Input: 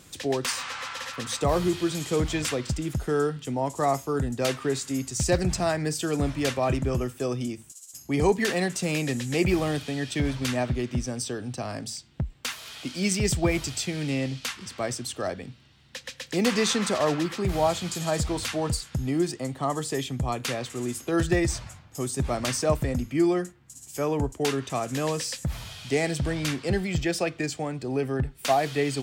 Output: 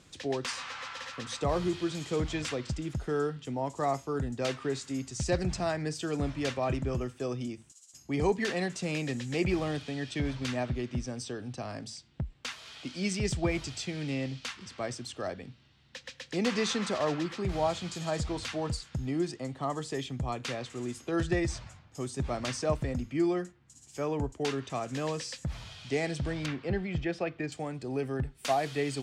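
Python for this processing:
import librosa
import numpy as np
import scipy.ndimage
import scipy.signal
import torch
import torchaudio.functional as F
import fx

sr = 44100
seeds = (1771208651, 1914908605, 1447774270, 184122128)

y = fx.lowpass(x, sr, hz=fx.steps((0.0, 6400.0), (26.46, 2800.0), (27.52, 11000.0)), slope=12)
y = F.gain(torch.from_numpy(y), -5.5).numpy()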